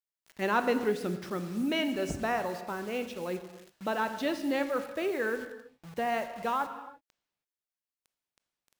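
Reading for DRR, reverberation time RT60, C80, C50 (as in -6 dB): 9.0 dB, not exponential, 11.5 dB, 10.5 dB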